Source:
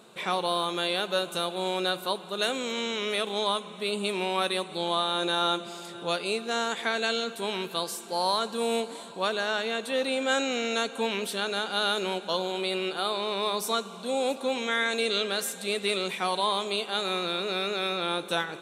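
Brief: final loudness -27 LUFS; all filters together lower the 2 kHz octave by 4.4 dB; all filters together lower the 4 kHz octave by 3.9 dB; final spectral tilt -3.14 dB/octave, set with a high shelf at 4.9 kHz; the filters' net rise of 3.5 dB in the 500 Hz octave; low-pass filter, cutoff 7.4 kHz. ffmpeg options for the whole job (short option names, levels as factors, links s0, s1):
-af "lowpass=7400,equalizer=f=500:t=o:g=4.5,equalizer=f=2000:t=o:g=-6.5,equalizer=f=4000:t=o:g=-5.5,highshelf=f=4900:g=8,volume=1.12"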